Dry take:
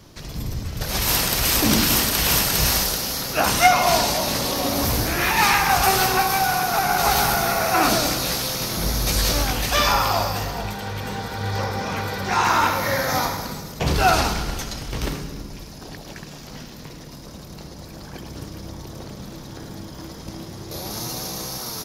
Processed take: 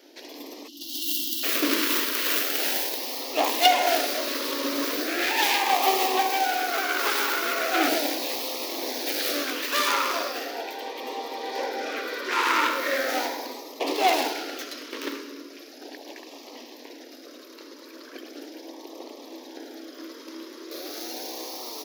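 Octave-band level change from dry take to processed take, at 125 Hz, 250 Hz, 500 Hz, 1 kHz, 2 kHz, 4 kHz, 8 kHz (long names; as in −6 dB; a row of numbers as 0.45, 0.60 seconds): below −40 dB, −5.0 dB, −3.0 dB, −5.5 dB, −4.0 dB, −4.0 dB, −9.0 dB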